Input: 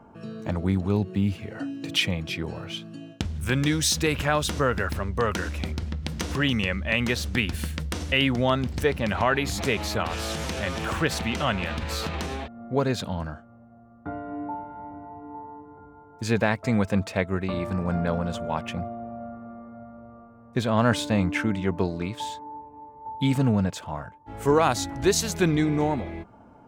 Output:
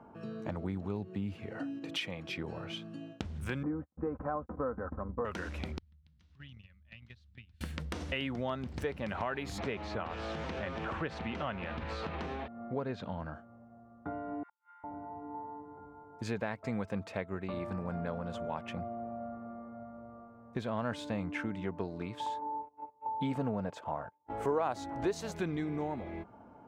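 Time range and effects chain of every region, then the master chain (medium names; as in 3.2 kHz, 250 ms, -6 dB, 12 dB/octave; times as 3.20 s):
1.79–2.38 s: bass shelf 210 Hz -9.5 dB + tape noise reduction on one side only decoder only
3.63–5.25 s: steep low-pass 1.3 kHz + gate -31 dBFS, range -43 dB + comb 3.9 ms, depth 50%
5.78–7.61 s: gate -23 dBFS, range -23 dB + FFT filter 110 Hz 0 dB, 180 Hz -9 dB, 430 Hz -26 dB, 4 kHz -6 dB, 13 kHz -25 dB + compression 12:1, threshold -40 dBFS
9.58–13.34 s: Bessel low-pass 3.2 kHz + tape noise reduction on one side only encoder only
14.43–14.84 s: steep high-pass 1.2 kHz 48 dB/octave + inverted gate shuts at -46 dBFS, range -38 dB
22.26–25.32 s: peaking EQ 640 Hz +8.5 dB 2.3 oct + gate -36 dBFS, range -25 dB
whole clip: high-pass 1 kHz 6 dB/octave; tilt EQ -4 dB/octave; compression 2.5:1, threshold -36 dBFS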